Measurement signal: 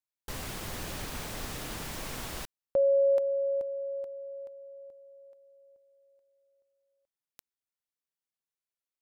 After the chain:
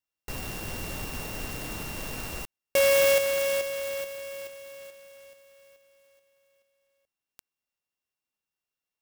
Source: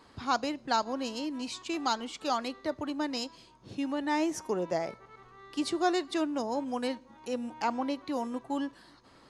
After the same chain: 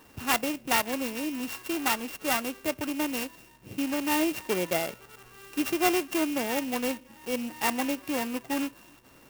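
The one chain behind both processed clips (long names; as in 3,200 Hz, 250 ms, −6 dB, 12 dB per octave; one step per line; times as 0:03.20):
samples sorted by size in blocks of 16 samples
converter with an unsteady clock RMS 0.041 ms
level +3 dB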